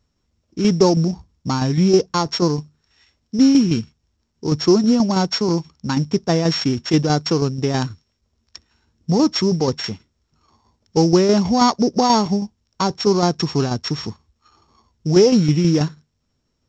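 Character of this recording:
a buzz of ramps at a fixed pitch in blocks of 8 samples
tremolo saw down 6.2 Hz, depth 50%
mu-law

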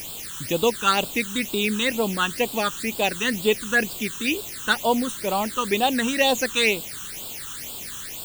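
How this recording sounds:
a quantiser's noise floor 6 bits, dither triangular
phaser sweep stages 8, 2.1 Hz, lowest notch 630–1,900 Hz

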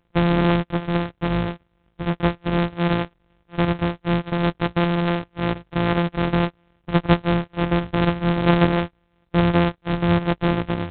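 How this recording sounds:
a buzz of ramps at a fixed pitch in blocks of 256 samples
G.726

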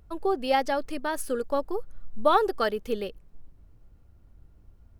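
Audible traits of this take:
background noise floor −57 dBFS
spectral slope −3.5 dB per octave

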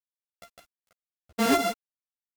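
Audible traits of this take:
a buzz of ramps at a fixed pitch in blocks of 64 samples
chopped level 1.6 Hz, depth 60%, duty 50%
a quantiser's noise floor 10 bits, dither none
a shimmering, thickened sound

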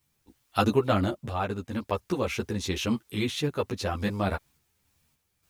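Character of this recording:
a quantiser's noise floor 12 bits, dither triangular
sample-and-hold tremolo
a shimmering, thickened sound

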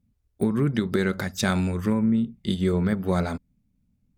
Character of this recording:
background noise floor −71 dBFS
spectral slope −6.5 dB per octave

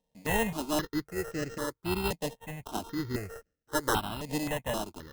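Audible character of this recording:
a buzz of ramps at a fixed pitch in blocks of 16 samples
sample-and-hold tremolo
aliases and images of a low sample rate 2,300 Hz, jitter 0%
notches that jump at a steady rate 3.8 Hz 360–3,500 Hz

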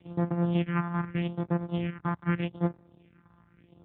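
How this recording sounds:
a buzz of ramps at a fixed pitch in blocks of 256 samples
phaser sweep stages 4, 0.82 Hz, lowest notch 450–3,000 Hz
AMR narrowband

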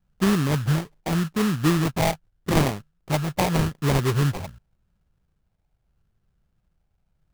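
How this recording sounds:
phaser sweep stages 8, 0.83 Hz, lowest notch 360–1,100 Hz
aliases and images of a low sample rate 1,500 Hz, jitter 20%

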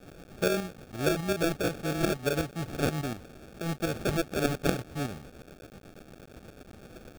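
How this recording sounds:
a quantiser's noise floor 8 bits, dither triangular
tremolo saw up 8.3 Hz, depth 60%
aliases and images of a low sample rate 1,000 Hz, jitter 0%

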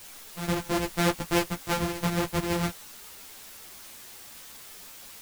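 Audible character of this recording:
a buzz of ramps at a fixed pitch in blocks of 256 samples
sample-and-hold tremolo
a quantiser's noise floor 8 bits, dither triangular
a shimmering, thickened sound

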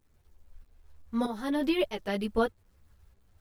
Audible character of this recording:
tremolo saw up 1.6 Hz, depth 75%
a quantiser's noise floor 12 bits, dither none
a shimmering, thickened sound

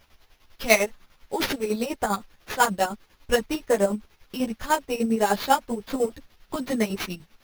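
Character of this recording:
a quantiser's noise floor 10 bits, dither triangular
chopped level 10 Hz, depth 60%, duty 45%
aliases and images of a low sample rate 8,300 Hz, jitter 0%
a shimmering, thickened sound

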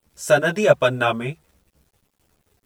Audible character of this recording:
a quantiser's noise floor 10 bits, dither none
a shimmering, thickened sound

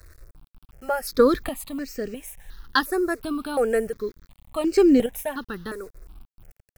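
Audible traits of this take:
chopped level 0.84 Hz, depth 60%, duty 25%
a quantiser's noise floor 10 bits, dither none
notches that jump at a steady rate 2.8 Hz 840–3,500 Hz

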